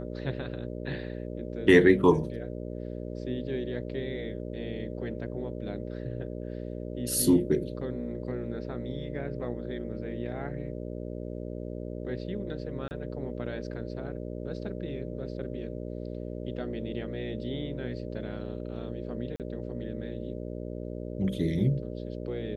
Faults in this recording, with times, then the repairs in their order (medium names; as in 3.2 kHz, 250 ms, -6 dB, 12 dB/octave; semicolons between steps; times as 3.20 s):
buzz 60 Hz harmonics 10 -37 dBFS
12.88–12.91 s: dropout 29 ms
19.36–19.40 s: dropout 38 ms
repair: de-hum 60 Hz, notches 10; interpolate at 12.88 s, 29 ms; interpolate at 19.36 s, 38 ms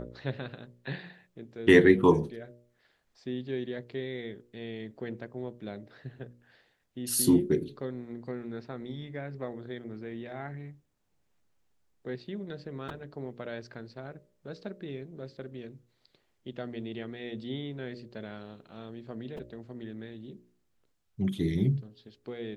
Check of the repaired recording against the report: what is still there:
nothing left